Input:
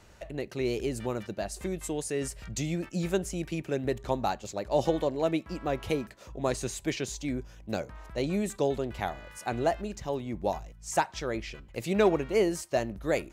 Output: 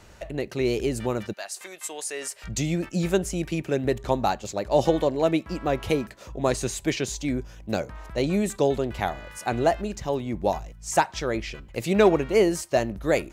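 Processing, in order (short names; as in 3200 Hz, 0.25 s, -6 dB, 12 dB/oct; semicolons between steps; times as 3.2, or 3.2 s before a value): 1.32–2.43 HPF 1200 Hz -> 590 Hz 12 dB/oct; gain +5.5 dB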